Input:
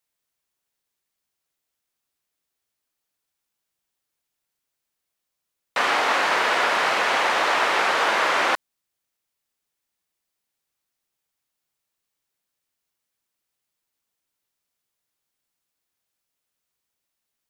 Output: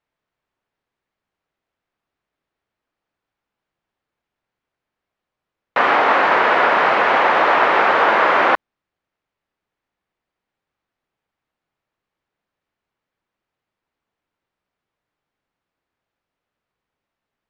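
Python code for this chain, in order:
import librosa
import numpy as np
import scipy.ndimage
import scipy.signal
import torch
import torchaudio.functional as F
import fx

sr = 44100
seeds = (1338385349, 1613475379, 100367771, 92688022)

y = scipy.signal.sosfilt(scipy.signal.bessel(2, 1600.0, 'lowpass', norm='mag', fs=sr, output='sos'), x)
y = y * librosa.db_to_amplitude(8.5)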